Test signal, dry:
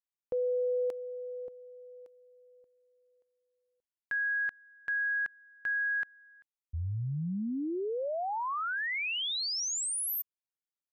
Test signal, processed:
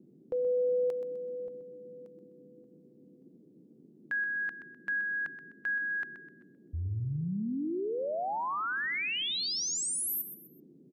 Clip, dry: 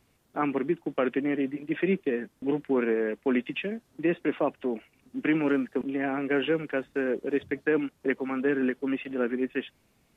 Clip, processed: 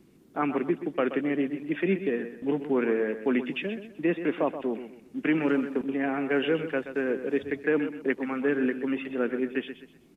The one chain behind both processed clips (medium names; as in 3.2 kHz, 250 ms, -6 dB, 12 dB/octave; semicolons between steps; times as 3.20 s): feedback delay 127 ms, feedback 32%, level -11 dB; band noise 150–380 Hz -58 dBFS